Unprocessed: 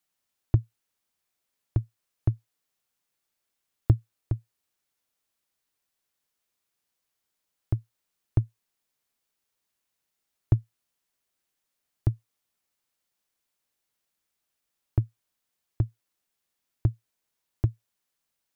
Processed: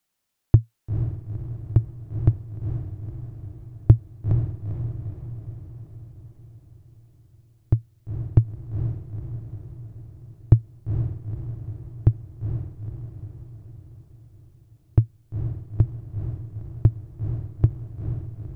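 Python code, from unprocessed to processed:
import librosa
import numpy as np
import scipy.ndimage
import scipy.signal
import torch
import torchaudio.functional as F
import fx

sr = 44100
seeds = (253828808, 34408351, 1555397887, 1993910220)

y = fx.low_shelf(x, sr, hz=350.0, db=4.5)
y = fx.echo_diffused(y, sr, ms=467, feedback_pct=57, wet_db=-6.5)
y = F.gain(torch.from_numpy(y), 3.0).numpy()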